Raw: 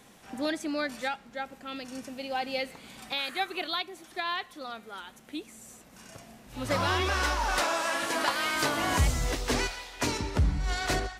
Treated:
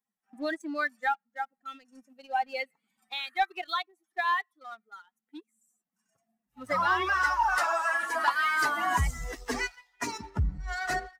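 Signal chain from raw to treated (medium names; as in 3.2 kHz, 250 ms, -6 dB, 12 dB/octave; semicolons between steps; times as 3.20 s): expander on every frequency bin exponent 2; high-order bell 1.2 kHz +10 dB; waveshaping leveller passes 1; trim -4.5 dB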